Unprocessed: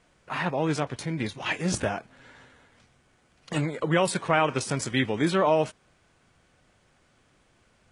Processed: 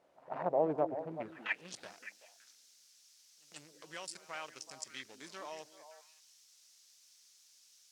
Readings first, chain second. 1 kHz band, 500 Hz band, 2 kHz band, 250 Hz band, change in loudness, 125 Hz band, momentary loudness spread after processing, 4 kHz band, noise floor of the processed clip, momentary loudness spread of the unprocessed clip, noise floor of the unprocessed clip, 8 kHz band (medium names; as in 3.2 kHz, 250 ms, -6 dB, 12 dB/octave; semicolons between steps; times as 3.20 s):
-13.0 dB, -11.0 dB, -13.5 dB, -17.5 dB, -13.0 dB, -23.5 dB, 22 LU, -15.0 dB, -65 dBFS, 8 LU, -65 dBFS, -13.5 dB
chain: local Wiener filter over 41 samples; dynamic bell 3.4 kHz, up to -7 dB, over -45 dBFS, Q 0.71; pre-echo 138 ms -21.5 dB; in parallel at -7.5 dB: word length cut 8-bit, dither triangular; on the sum: band-pass sweep 630 Hz -> 5.6 kHz, 0.99–1.94 s; on a send: repeats whose band climbs or falls 189 ms, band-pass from 270 Hz, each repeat 1.4 oct, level -6.5 dB